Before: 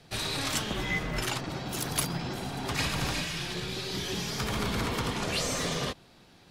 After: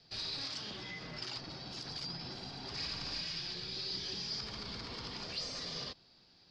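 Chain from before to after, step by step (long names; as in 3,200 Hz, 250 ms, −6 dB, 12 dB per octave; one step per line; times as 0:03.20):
0:00.42–0:01.37: high-pass filter 84 Hz
brickwall limiter −25 dBFS, peak gain reduction 10.5 dB
transistor ladder low-pass 5,100 Hz, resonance 80%
0:02.67–0:03.21: flutter between parallel walls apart 9.3 metres, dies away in 0.43 s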